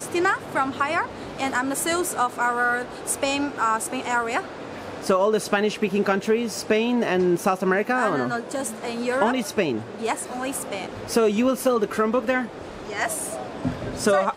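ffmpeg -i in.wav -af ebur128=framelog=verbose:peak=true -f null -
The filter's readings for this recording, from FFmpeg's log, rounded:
Integrated loudness:
  I:         -23.8 LUFS
  Threshold: -33.9 LUFS
Loudness range:
  LRA:         2.3 LU
  Threshold: -43.8 LUFS
  LRA low:   -24.7 LUFS
  LRA high:  -22.4 LUFS
True peak:
  Peak:       -6.4 dBFS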